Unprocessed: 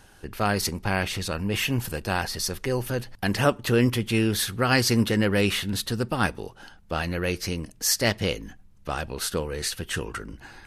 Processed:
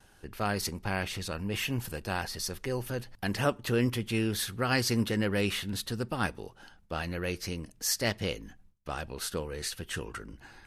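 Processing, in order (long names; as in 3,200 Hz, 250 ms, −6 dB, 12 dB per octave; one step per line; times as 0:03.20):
noise gate with hold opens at −43 dBFS
level −6.5 dB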